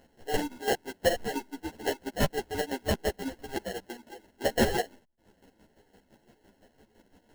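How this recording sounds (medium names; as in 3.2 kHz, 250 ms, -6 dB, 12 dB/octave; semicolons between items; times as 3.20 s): aliases and images of a low sample rate 1.2 kHz, jitter 0%; chopped level 5.9 Hz, depth 65%, duty 35%; a shimmering, thickened sound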